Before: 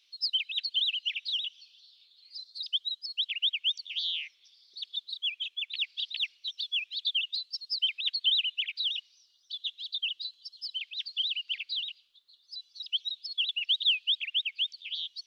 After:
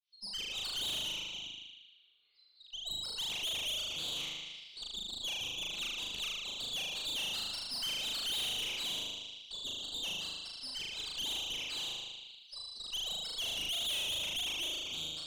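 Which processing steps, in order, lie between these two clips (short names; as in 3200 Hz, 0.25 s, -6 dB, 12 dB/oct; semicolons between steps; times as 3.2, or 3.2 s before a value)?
opening faded in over 0.64 s; 1.08–2.81 Bessel low-pass 1800 Hz, order 8; flutter echo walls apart 6.6 m, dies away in 1.4 s; tube stage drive 29 dB, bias 0.7; in parallel at +2 dB: limiter -36 dBFS, peak gain reduction 10 dB; on the sum: gain -7.5 dB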